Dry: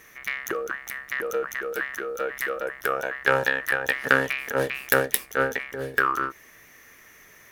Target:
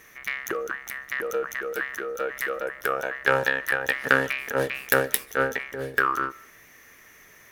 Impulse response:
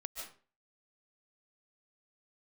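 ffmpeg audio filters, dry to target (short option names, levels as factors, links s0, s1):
-filter_complex "[0:a]asplit=2[s0][s1];[1:a]atrim=start_sample=2205,highshelf=f=11000:g=-11.5[s2];[s1][s2]afir=irnorm=-1:irlink=0,volume=0.126[s3];[s0][s3]amix=inputs=2:normalize=0,volume=0.891"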